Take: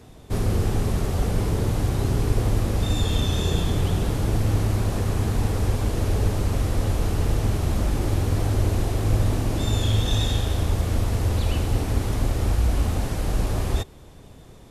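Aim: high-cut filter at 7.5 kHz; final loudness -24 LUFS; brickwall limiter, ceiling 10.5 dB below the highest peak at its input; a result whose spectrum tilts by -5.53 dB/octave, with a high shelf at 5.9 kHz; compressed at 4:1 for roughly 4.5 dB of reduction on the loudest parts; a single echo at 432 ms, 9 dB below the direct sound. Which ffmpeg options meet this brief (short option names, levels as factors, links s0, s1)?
-af "lowpass=7500,highshelf=f=5900:g=8.5,acompressor=threshold=0.0891:ratio=4,alimiter=limit=0.075:level=0:latency=1,aecho=1:1:432:0.355,volume=2.37"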